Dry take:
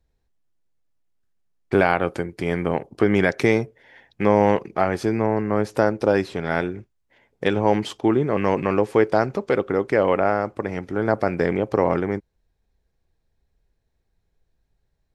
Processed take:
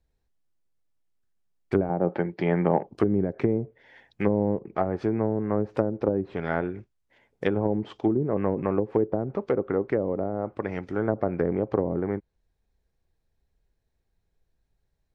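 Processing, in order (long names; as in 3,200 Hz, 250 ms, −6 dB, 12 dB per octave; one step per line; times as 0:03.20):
treble cut that deepens with the level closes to 400 Hz, closed at −14.5 dBFS
0:01.89–0:02.87: loudspeaker in its box 140–4,500 Hz, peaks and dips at 180 Hz +8 dB, 360 Hz +4 dB, 590 Hz +6 dB, 840 Hz +9 dB, 1,800 Hz +4 dB
level −3.5 dB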